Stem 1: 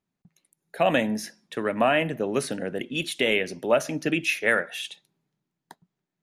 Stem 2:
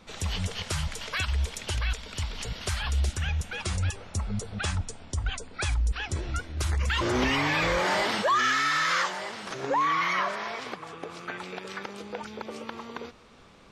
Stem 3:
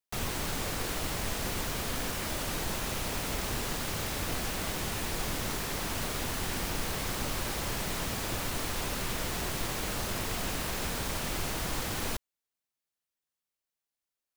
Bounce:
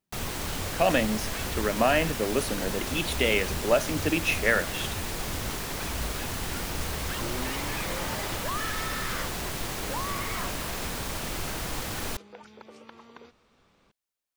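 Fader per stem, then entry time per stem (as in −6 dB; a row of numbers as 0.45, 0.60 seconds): −1.5, −10.5, +0.5 decibels; 0.00, 0.20, 0.00 seconds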